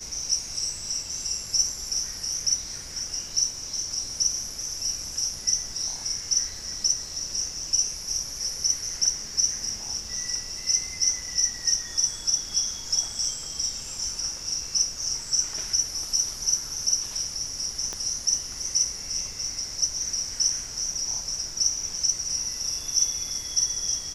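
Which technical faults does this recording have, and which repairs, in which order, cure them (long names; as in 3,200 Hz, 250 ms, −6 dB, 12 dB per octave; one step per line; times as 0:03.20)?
0:17.93: click −18 dBFS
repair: click removal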